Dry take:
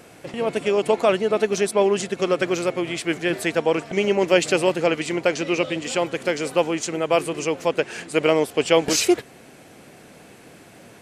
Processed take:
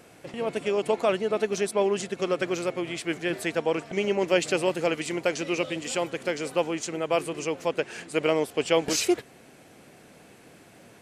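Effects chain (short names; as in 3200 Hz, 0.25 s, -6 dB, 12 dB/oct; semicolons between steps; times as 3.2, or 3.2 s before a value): 4.72–6.11 high shelf 8700 Hz +9 dB; gain -5.5 dB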